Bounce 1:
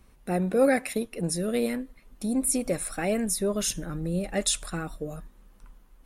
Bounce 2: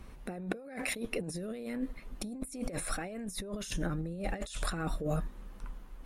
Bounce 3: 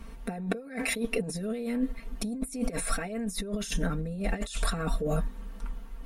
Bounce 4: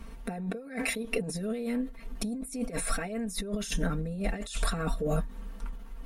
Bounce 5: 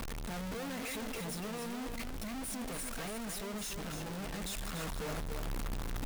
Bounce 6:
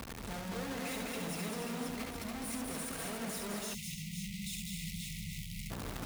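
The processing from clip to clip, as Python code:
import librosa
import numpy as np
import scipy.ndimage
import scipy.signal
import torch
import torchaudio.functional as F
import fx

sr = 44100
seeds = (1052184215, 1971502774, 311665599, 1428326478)

y1 = fx.over_compress(x, sr, threshold_db=-37.0, ratio=-1.0)
y1 = fx.high_shelf(y1, sr, hz=6000.0, db=-9.0)
y2 = y1 + 0.95 * np.pad(y1, (int(4.4 * sr / 1000.0), 0))[:len(y1)]
y2 = F.gain(torch.from_numpy(y2), 2.0).numpy()
y3 = fx.end_taper(y2, sr, db_per_s=140.0)
y4 = np.sign(y3) * np.sqrt(np.mean(np.square(y3)))
y4 = fx.rider(y4, sr, range_db=10, speed_s=2.0)
y4 = y4 + 10.0 ** (-6.5 / 20.0) * np.pad(y4, (int(288 * sr / 1000.0), 0))[:len(y4)]
y4 = F.gain(torch.from_numpy(y4), -8.0).numpy()
y5 = scipy.signal.sosfilt(scipy.signal.butter(2, 56.0, 'highpass', fs=sr, output='sos'), y4)
y5 = fx.echo_multitap(y5, sr, ms=(69, 204, 533), db=(-4.0, -4.0, -4.5))
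y5 = fx.spec_erase(y5, sr, start_s=3.74, length_s=1.97, low_hz=220.0, high_hz=1900.0)
y5 = F.gain(torch.from_numpy(y5), -2.5).numpy()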